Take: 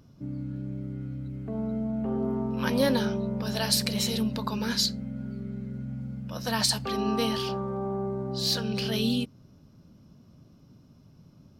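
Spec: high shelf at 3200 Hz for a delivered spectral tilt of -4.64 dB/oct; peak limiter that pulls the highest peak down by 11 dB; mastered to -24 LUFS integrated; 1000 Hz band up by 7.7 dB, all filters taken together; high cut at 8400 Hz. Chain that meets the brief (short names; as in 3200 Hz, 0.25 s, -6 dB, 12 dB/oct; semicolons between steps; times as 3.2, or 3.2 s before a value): LPF 8400 Hz; bell 1000 Hz +9 dB; high shelf 3200 Hz +4 dB; gain +5.5 dB; limiter -12.5 dBFS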